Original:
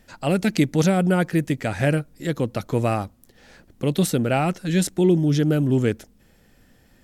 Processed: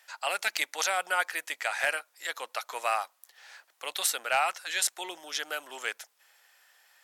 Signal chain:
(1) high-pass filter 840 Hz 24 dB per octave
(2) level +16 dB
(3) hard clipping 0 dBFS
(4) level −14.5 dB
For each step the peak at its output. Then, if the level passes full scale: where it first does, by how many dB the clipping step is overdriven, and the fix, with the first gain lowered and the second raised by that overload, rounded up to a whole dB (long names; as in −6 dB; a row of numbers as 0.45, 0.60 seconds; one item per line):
−7.5, +8.5, 0.0, −14.5 dBFS
step 2, 8.5 dB
step 2 +7 dB, step 4 −5.5 dB